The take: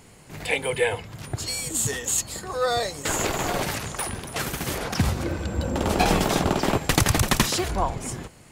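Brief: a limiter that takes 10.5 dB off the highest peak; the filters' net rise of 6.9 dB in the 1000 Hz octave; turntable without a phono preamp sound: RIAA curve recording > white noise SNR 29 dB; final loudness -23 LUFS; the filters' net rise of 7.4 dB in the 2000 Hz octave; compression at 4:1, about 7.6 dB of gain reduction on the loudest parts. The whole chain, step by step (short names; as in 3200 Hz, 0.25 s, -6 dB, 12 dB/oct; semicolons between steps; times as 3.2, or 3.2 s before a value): bell 1000 Hz +8.5 dB; bell 2000 Hz +3.5 dB; compressor 4:1, threshold -21 dBFS; limiter -17 dBFS; RIAA curve recording; white noise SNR 29 dB; gain -1 dB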